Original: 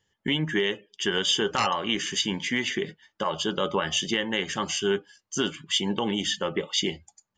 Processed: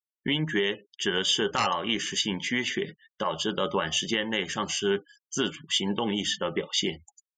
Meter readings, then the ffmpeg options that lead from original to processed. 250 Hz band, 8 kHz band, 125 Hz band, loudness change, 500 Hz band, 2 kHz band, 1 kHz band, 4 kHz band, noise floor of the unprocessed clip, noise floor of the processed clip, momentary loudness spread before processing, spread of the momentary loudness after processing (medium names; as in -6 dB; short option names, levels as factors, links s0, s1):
-1.0 dB, -1.0 dB, -1.0 dB, -1.0 dB, -1.0 dB, -1.0 dB, -1.0 dB, -1.0 dB, -78 dBFS, under -85 dBFS, 7 LU, 7 LU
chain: -af "afftfilt=real='re*gte(hypot(re,im),0.00398)':imag='im*gte(hypot(re,im),0.00398)':win_size=1024:overlap=0.75,volume=0.891"